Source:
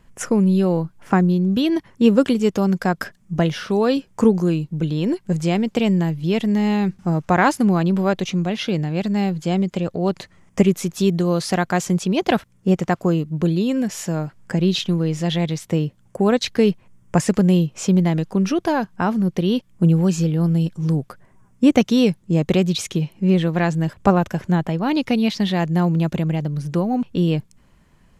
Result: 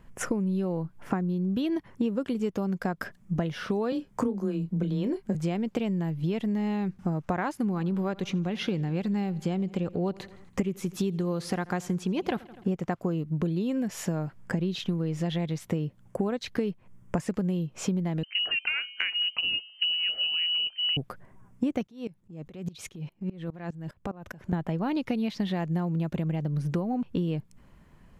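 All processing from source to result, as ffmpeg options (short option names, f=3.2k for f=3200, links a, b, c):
-filter_complex "[0:a]asettb=1/sr,asplit=3[a][b][c];[a]atrim=end=3.924[d];[b]atrim=start=3.92:end=5.35,asetpts=PTS-STARTPTS,afade=t=in:d=0.004:c=qsin,afade=t=out:st=1.426:d=0.004:c=qsin,bandreject=f=2.7k:w=15,afreqshift=16,asplit=2[e][f];[f]adelay=30,volume=-10.5dB[g];[e][g]amix=inputs=2:normalize=0,atrim=end_sample=63063[h];[c]atrim=start=5.346[i];[d][h]acrossfade=d=0.004:c1=hsin:c2=qsin[j];[j][i]acrossfade=d=0.004:c1=qsin:c2=hsin,asettb=1/sr,asplit=3[k][l][m];[k]atrim=end=7.564[n];[l]atrim=start=7.56:end=12.76,asetpts=PTS-STARTPTS,afade=t=in:d=0.004:c=qsin,afade=t=out:st=5.196:d=0.004:c=qsin,bandreject=f=650:w=5.9,aecho=1:1:83|166|249|332:0.0708|0.0404|0.023|0.0131,atrim=end_sample=229320[o];[m]atrim=start=12.756[p];[n][o]acrossfade=d=0.004:c1=hsin:c2=qsin[q];[q][p]acrossfade=d=0.004:c1=qsin:c2=hsin,asettb=1/sr,asplit=3[r][s][t];[r]atrim=end=18.234[u];[s]atrim=start=18.23:end=20.97,asetpts=PTS-STARTPTS,afade=t=in:d=0.004:c=qsin,afade=t=out:st=2.736:d=0.004:c=qsin,bandreject=f=222.4:t=h:w=4,bandreject=f=444.8:t=h:w=4,bandreject=f=667.2:t=h:w=4,bandreject=f=889.6:t=h:w=4,lowpass=f=2.6k:t=q:w=0.5098,lowpass=f=2.6k:t=q:w=0.6013,lowpass=f=2.6k:t=q:w=0.9,lowpass=f=2.6k:t=q:w=2.563,afreqshift=-3100[v];[t]atrim=start=20.966[w];[u][v]acrossfade=d=0.004:c1=hsin:c2=qsin[x];[x][w]acrossfade=d=0.004:c1=qsin:c2=hsin,asettb=1/sr,asplit=3[y][z][aa];[y]atrim=end=21.874[ab];[z]atrim=start=21.87:end=24.53,asetpts=PTS-STARTPTS,afade=t=in:d=0.004:c=qsin,afade=t=out:st=2.656:d=0.004:c=qsin,agate=range=-6dB:threshold=-47dB:ratio=16:release=100:detection=peak,acompressor=threshold=-24dB:ratio=16:attack=3.2:release=140:knee=1:detection=peak,aeval=exprs='val(0)*pow(10,-22*if(lt(mod(-4.9*n/s,1),2*abs(-4.9)/1000),1-mod(-4.9*n/s,1)/(2*abs(-4.9)/1000),(mod(-4.9*n/s,1)-2*abs(-4.9)/1000)/(1-2*abs(-4.9)/1000))/20)':c=same[ac];[aa]atrim=start=24.526[ad];[ab][ac]acrossfade=d=0.004:c1=hsin:c2=qsin[ae];[ae][ad]acrossfade=d=0.004:c1=qsin:c2=hsin,equalizer=f=6.6k:w=0.48:g=-7,acompressor=threshold=-25dB:ratio=10"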